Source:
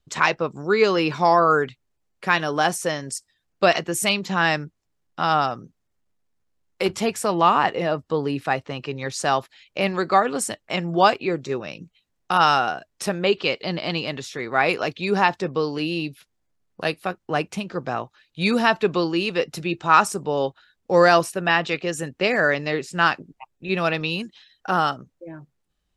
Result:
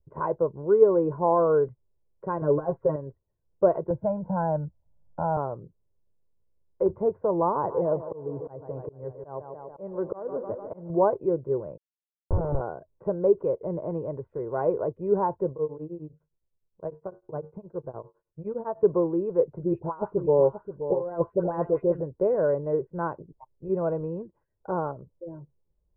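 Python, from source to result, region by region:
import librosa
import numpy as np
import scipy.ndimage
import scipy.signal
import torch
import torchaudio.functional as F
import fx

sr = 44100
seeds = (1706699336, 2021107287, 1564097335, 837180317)

y = fx.chain(x, sr, fx.over_compress(threshold_db=-22.0, ratio=-0.5),
    fx.comb(ms=7.3, depth=0.95), at=(2.41, 2.96))
y = fx.chain(y, sr, fx.lowpass(hz=1300.0, slope=12),
    fx.comb(ms=1.3, depth=0.98),
    fx.band_squash(depth_pct=40), at=(3.9, 5.37))
y = fx.chain(y, sr, fx.echo_tape(ms=148, feedback_pct=73, wet_db=-12.5, lp_hz=3600.0, drive_db=1.0, wow_cents=40),
    fx.auto_swell(attack_ms=343.0), at=(7.54, 10.9))
y = fx.chain(y, sr, fx.hum_notches(base_hz=50, count=8),
    fx.schmitt(flips_db=-13.5),
    fx.sustainer(db_per_s=150.0), at=(11.77, 12.61))
y = fx.chain(y, sr, fx.comb_fb(f0_hz=51.0, decay_s=0.33, harmonics='odd', damping=0.0, mix_pct=50),
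    fx.tremolo_abs(hz=9.8), at=(15.53, 18.83))
y = fx.chain(y, sr, fx.over_compress(threshold_db=-20.0, ratio=-0.5),
    fx.dispersion(late='highs', ms=94.0, hz=1800.0),
    fx.echo_single(ms=528, db=-10.5), at=(19.63, 22.01))
y = scipy.signal.sosfilt(scipy.signal.bessel(6, 580.0, 'lowpass', norm='mag', fs=sr, output='sos'), y)
y = y + 0.62 * np.pad(y, (int(2.0 * sr / 1000.0), 0))[:len(y)]
y = fx.dynamic_eq(y, sr, hz=180.0, q=1.0, threshold_db=-40.0, ratio=4.0, max_db=-3)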